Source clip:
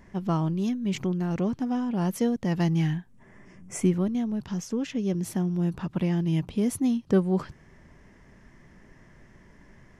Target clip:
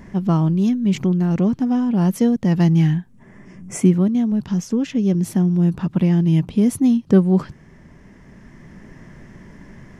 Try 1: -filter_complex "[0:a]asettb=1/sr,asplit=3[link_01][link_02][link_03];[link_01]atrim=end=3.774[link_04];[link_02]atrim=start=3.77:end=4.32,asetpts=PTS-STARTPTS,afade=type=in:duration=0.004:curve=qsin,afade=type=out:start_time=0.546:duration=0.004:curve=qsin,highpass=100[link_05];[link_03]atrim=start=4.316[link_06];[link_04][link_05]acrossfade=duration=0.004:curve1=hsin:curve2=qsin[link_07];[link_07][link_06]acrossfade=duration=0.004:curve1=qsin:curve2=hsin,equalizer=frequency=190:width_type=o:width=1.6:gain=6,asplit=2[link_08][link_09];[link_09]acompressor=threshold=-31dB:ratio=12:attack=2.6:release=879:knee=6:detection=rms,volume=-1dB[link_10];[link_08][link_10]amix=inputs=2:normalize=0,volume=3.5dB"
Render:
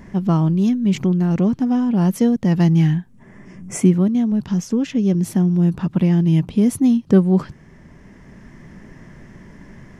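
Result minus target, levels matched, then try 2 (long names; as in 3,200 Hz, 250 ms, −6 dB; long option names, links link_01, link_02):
downward compressor: peak gain reduction −6.5 dB
-filter_complex "[0:a]asettb=1/sr,asplit=3[link_01][link_02][link_03];[link_01]atrim=end=3.774[link_04];[link_02]atrim=start=3.77:end=4.32,asetpts=PTS-STARTPTS,afade=type=in:duration=0.004:curve=qsin,afade=type=out:start_time=0.546:duration=0.004:curve=qsin,highpass=100[link_05];[link_03]atrim=start=4.316[link_06];[link_04][link_05]acrossfade=duration=0.004:curve1=hsin:curve2=qsin[link_07];[link_07][link_06]acrossfade=duration=0.004:curve1=qsin:curve2=hsin,equalizer=frequency=190:width_type=o:width=1.6:gain=6,asplit=2[link_08][link_09];[link_09]acompressor=threshold=-38dB:ratio=12:attack=2.6:release=879:knee=6:detection=rms,volume=-1dB[link_10];[link_08][link_10]amix=inputs=2:normalize=0,volume=3.5dB"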